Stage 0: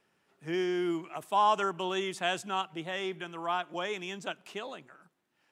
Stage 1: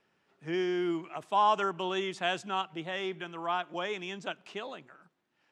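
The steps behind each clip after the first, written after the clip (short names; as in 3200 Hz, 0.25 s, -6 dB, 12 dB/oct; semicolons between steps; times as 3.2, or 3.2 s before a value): LPF 6000 Hz 12 dB/oct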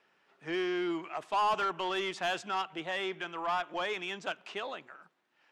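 overdrive pedal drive 18 dB, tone 3600 Hz, clips at -15.5 dBFS; gain -6.5 dB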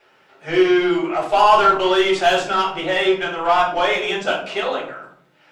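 reverb RT60 0.60 s, pre-delay 3 ms, DRR -6 dB; gain +6.5 dB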